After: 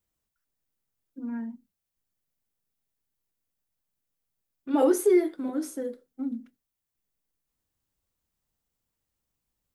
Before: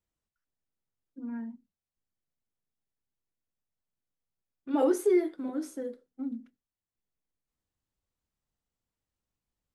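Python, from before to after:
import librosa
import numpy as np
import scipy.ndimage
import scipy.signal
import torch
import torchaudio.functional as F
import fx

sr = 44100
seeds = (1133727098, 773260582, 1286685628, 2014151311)

y = fx.high_shelf(x, sr, hz=10000.0, db=9.5)
y = y * librosa.db_to_amplitude(3.5)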